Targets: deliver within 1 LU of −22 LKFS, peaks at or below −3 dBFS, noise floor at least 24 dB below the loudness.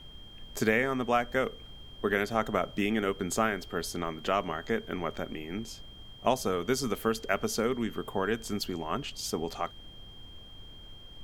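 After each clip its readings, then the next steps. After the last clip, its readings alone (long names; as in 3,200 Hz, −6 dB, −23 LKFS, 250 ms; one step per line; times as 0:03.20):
interfering tone 3,200 Hz; level of the tone −50 dBFS; background noise floor −49 dBFS; target noise floor −55 dBFS; integrated loudness −31.0 LKFS; sample peak −10.5 dBFS; target loudness −22.0 LKFS
→ notch filter 3,200 Hz, Q 30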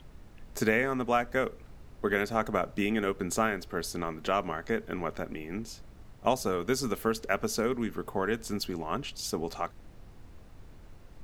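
interfering tone none found; background noise floor −52 dBFS; target noise floor −56 dBFS
→ noise reduction from a noise print 6 dB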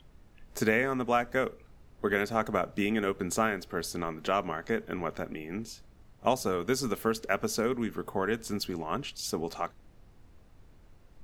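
background noise floor −57 dBFS; integrated loudness −31.5 LKFS; sample peak −10.5 dBFS; target loudness −22.0 LKFS
→ level +9.5 dB
brickwall limiter −3 dBFS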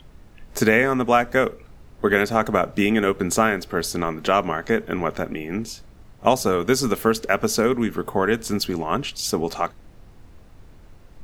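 integrated loudness −22.0 LKFS; sample peak −3.0 dBFS; background noise floor −48 dBFS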